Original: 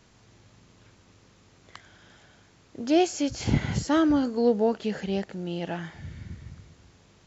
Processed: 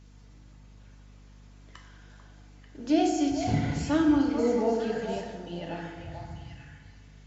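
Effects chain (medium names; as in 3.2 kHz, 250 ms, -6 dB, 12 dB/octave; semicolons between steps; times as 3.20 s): coarse spectral quantiser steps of 15 dB; repeats whose band climbs or falls 443 ms, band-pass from 810 Hz, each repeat 1.4 oct, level -3.5 dB; FDN reverb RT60 1.5 s, low-frequency decay 1.1×, high-frequency decay 0.6×, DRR 1 dB; hum 50 Hz, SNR 23 dB; trim -5.5 dB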